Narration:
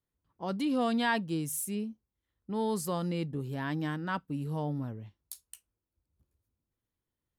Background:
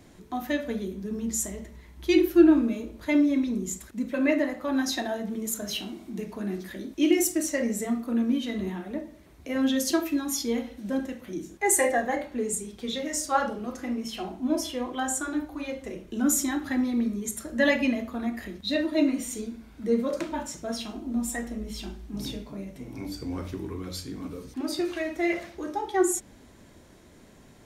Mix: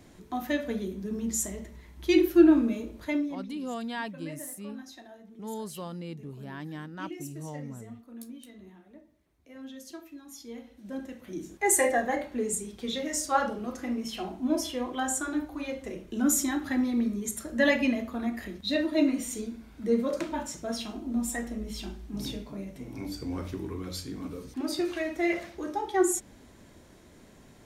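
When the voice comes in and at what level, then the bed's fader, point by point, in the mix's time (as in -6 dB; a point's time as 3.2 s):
2.90 s, -6.0 dB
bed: 3 s -1 dB
3.52 s -19 dB
10.2 s -19 dB
11.5 s -1 dB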